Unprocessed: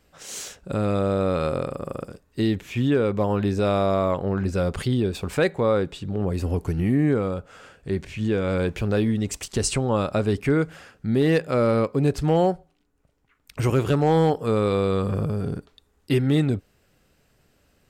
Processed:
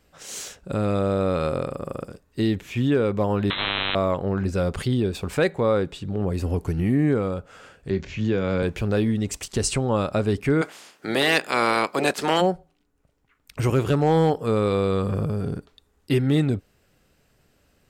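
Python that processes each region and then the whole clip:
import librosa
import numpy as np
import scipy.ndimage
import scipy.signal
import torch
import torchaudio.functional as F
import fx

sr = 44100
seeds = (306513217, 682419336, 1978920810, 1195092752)

y = fx.chain(x, sr, fx.freq_invert(carrier_hz=3700),
    fx.spectral_comp(ratio=10.0), at=(3.5, 3.95))
y = fx.chain(y, sr, fx.steep_lowpass(hz=7200.0, slope=72),
    fx.doubler(ms=26.0, db=-13.5),
    fx.band_squash(depth_pct=40), at=(7.9, 8.63))
y = fx.spec_clip(y, sr, under_db=22, at=(10.61, 12.4), fade=0.02)
y = fx.highpass(y, sr, hz=230.0, slope=12, at=(10.61, 12.4), fade=0.02)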